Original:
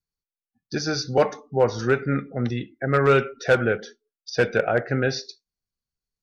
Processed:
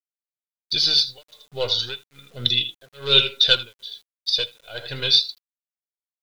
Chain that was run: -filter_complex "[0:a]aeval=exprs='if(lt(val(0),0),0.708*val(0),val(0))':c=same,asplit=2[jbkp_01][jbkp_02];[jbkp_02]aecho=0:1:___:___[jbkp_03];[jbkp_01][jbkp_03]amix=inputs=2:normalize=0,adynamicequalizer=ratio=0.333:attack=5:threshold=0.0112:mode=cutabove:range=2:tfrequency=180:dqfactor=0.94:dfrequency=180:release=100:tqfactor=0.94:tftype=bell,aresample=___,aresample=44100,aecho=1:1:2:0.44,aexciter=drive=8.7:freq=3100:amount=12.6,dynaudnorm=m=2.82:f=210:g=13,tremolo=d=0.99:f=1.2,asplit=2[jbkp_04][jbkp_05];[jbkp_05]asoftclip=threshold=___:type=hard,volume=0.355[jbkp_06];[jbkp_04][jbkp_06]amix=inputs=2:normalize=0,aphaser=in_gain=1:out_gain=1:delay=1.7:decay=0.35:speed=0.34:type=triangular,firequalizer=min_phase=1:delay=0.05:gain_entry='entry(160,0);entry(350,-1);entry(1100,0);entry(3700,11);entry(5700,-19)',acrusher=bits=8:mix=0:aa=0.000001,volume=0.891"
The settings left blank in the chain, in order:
80, 0.237, 22050, 0.237